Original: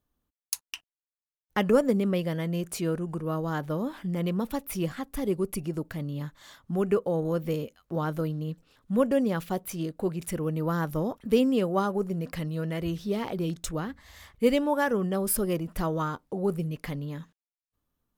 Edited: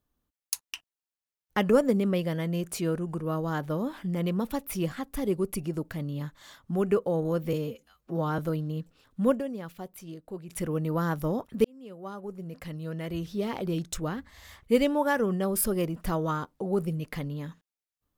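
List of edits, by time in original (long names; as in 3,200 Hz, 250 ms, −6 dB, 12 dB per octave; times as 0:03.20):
0:07.53–0:08.10: time-stretch 1.5×
0:09.03–0:10.31: duck −10 dB, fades 0.12 s
0:11.36–0:13.41: fade in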